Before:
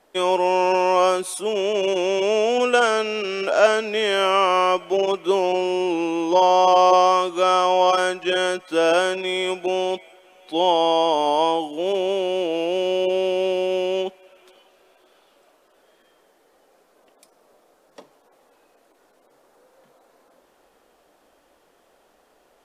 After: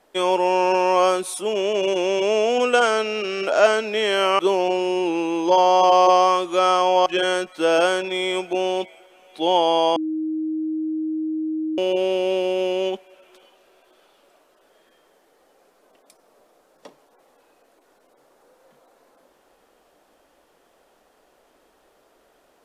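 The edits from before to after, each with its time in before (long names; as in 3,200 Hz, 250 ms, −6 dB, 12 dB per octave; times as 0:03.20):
0:04.39–0:05.23: remove
0:07.90–0:08.19: remove
0:11.09–0:12.91: beep over 314 Hz −22 dBFS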